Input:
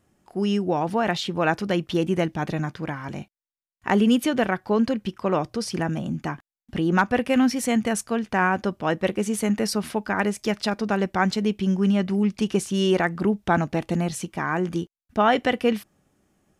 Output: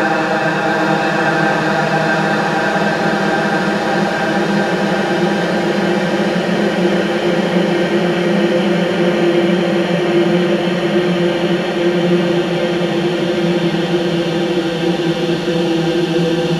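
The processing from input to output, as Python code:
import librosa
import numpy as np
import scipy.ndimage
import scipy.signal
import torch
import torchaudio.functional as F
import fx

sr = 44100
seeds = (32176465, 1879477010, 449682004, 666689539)

y = fx.reverse_delay_fb(x, sr, ms=195, feedback_pct=74, wet_db=-11.5)
y = fx.paulstretch(y, sr, seeds[0], factor=41.0, window_s=0.5, from_s=1.52)
y = fx.echo_diffused(y, sr, ms=850, feedback_pct=44, wet_db=-5.0)
y = F.gain(torch.from_numpy(y), 7.5).numpy()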